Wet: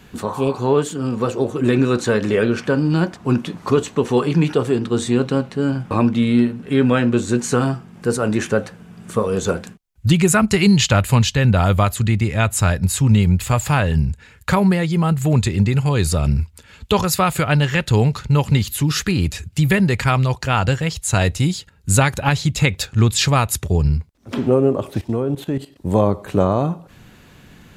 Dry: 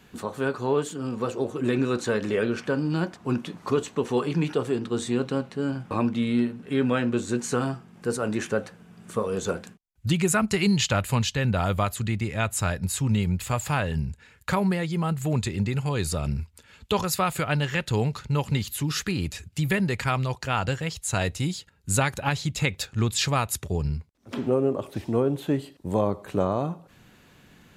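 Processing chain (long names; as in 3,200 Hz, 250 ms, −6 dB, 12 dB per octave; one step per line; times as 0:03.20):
0:00.30–0:00.58: healed spectral selection 700–2,200 Hz
0:25.01–0:25.76: output level in coarse steps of 14 dB
low-shelf EQ 120 Hz +6.5 dB
level +7 dB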